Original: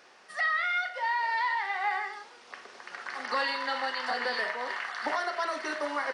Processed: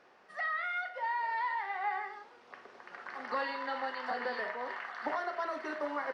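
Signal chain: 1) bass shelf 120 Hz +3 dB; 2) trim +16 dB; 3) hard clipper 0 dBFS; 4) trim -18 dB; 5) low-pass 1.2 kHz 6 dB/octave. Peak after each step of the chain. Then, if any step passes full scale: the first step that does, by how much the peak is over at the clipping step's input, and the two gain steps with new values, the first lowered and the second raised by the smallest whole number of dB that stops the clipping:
-17.5 dBFS, -1.5 dBFS, -1.5 dBFS, -19.5 dBFS, -22.5 dBFS; nothing clips

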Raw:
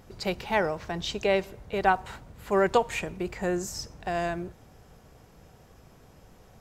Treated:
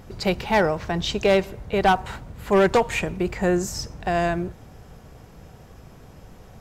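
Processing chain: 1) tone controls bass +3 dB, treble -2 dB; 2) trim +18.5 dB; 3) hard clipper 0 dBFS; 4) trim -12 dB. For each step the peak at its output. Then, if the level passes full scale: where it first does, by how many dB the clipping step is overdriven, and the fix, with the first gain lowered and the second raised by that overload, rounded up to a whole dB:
-9.0 dBFS, +9.5 dBFS, 0.0 dBFS, -12.0 dBFS; step 2, 9.5 dB; step 2 +8.5 dB, step 4 -2 dB

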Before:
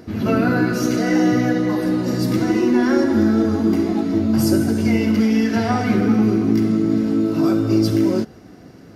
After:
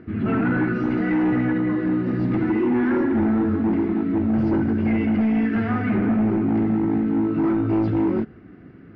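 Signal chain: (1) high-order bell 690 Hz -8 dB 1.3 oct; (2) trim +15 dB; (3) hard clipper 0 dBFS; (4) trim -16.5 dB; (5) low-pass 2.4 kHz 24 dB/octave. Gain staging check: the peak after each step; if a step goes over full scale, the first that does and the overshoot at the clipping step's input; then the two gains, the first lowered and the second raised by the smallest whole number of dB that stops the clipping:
-5.5 dBFS, +9.5 dBFS, 0.0 dBFS, -16.5 dBFS, -15.5 dBFS; step 2, 9.5 dB; step 2 +5 dB, step 4 -6.5 dB

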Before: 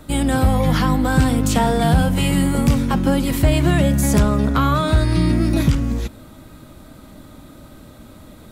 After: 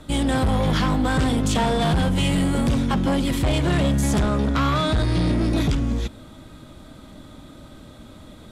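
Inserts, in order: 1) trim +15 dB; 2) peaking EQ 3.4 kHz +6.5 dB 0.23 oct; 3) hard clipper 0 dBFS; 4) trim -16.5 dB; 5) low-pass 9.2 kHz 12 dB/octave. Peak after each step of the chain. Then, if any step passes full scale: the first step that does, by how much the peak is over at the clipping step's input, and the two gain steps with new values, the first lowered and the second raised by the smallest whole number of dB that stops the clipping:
+9.5 dBFS, +9.5 dBFS, 0.0 dBFS, -16.5 dBFS, -15.5 dBFS; step 1, 9.5 dB; step 1 +5 dB, step 4 -6.5 dB

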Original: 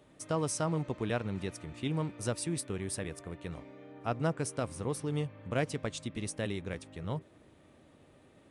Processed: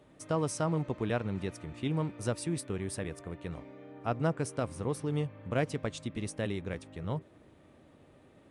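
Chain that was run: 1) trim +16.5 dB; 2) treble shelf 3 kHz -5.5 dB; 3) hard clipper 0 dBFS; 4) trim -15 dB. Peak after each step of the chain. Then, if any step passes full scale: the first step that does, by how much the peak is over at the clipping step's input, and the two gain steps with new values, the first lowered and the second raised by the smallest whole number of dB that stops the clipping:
-0.5 dBFS, -2.0 dBFS, -2.0 dBFS, -17.0 dBFS; nothing clips

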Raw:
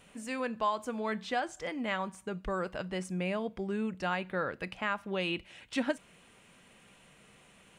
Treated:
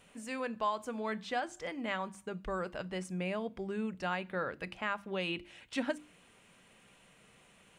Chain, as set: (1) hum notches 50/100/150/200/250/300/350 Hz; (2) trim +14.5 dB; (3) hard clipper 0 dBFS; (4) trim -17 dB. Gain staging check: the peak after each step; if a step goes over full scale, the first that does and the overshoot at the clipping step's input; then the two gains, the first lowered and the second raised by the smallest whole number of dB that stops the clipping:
-17.5 dBFS, -3.0 dBFS, -3.0 dBFS, -20.0 dBFS; nothing clips

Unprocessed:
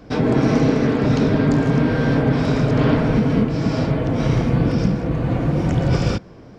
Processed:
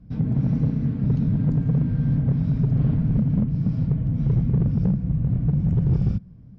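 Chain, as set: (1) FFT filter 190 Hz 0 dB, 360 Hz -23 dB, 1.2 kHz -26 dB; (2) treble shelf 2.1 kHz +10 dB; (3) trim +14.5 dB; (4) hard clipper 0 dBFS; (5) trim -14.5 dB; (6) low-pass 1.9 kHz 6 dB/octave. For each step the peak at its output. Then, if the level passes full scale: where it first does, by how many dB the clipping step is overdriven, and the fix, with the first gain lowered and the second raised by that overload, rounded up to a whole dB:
-7.0 dBFS, -7.0 dBFS, +7.5 dBFS, 0.0 dBFS, -14.5 dBFS, -14.5 dBFS; step 3, 7.5 dB; step 3 +6.5 dB, step 5 -6.5 dB

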